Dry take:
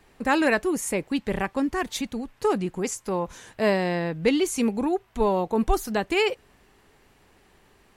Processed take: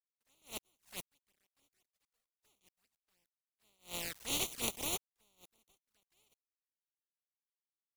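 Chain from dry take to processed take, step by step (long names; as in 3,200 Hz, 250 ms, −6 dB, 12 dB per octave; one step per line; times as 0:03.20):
compressing power law on the bin magnitudes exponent 0.16
centre clipping without the shift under −26.5 dBFS
flanger swept by the level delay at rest 9.2 ms, full sweep at −22.5 dBFS
level that may rise only so fast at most 240 dB per second
level −9 dB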